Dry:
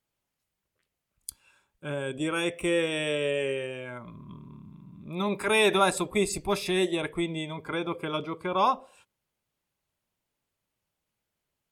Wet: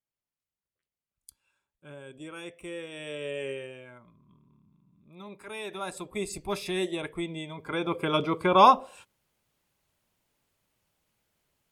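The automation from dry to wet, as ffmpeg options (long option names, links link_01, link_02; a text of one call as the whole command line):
ffmpeg -i in.wav -af "volume=18dB,afade=type=in:start_time=2.89:duration=0.61:silence=0.398107,afade=type=out:start_time=3.5:duration=0.66:silence=0.281838,afade=type=in:start_time=5.72:duration=0.83:silence=0.251189,afade=type=in:start_time=7.57:duration=0.8:silence=0.281838" out.wav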